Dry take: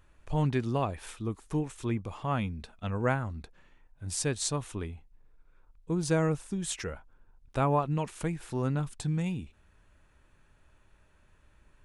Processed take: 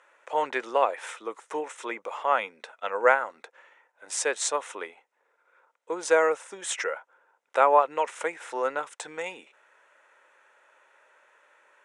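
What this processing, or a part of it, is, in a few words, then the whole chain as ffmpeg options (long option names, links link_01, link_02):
phone speaker on a table: -af "highpass=frequency=460:width=0.5412,highpass=frequency=460:width=1.3066,equalizer=frequency=520:width_type=q:width=4:gain=7,equalizer=frequency=920:width_type=q:width=4:gain=5,equalizer=frequency=1400:width_type=q:width=4:gain=6,equalizer=frequency=2000:width_type=q:width=4:gain=7,equalizer=frequency=4500:width_type=q:width=4:gain=-8,lowpass=frequency=8800:width=0.5412,lowpass=frequency=8800:width=1.3066,volume=5.5dB"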